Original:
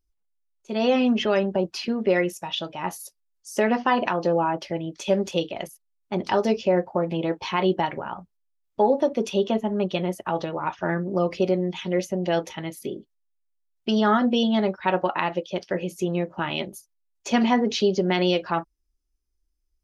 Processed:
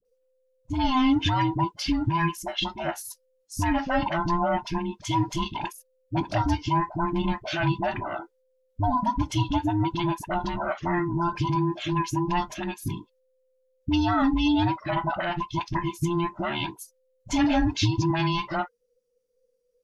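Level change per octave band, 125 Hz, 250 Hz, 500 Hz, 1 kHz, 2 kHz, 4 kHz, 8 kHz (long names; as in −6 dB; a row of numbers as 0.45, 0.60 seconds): +5.0, −1.0, −9.5, +1.0, −1.5, −1.0, +0.5 decibels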